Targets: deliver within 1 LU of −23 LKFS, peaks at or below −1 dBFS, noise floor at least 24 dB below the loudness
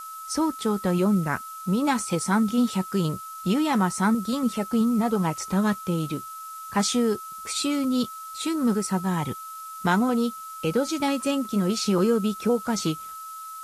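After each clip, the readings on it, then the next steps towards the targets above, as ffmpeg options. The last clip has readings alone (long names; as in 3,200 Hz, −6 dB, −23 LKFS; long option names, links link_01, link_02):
interfering tone 1,300 Hz; level of the tone −36 dBFS; background noise floor −39 dBFS; target noise floor −49 dBFS; integrated loudness −25.0 LKFS; sample peak −9.5 dBFS; target loudness −23.0 LKFS
→ -af "bandreject=frequency=1300:width=30"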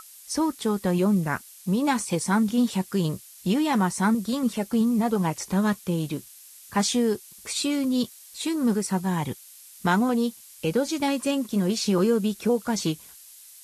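interfering tone none found; background noise floor −48 dBFS; target noise floor −50 dBFS
→ -af "afftdn=noise_reduction=6:noise_floor=-48"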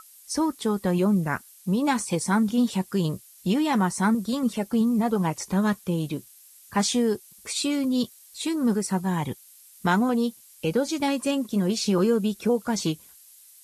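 background noise floor −52 dBFS; integrated loudness −25.5 LKFS; sample peak −9.5 dBFS; target loudness −23.0 LKFS
→ -af "volume=2.5dB"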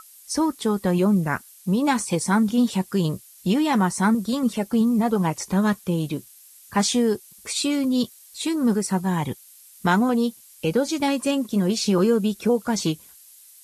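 integrated loudness −23.0 LKFS; sample peak −7.0 dBFS; background noise floor −50 dBFS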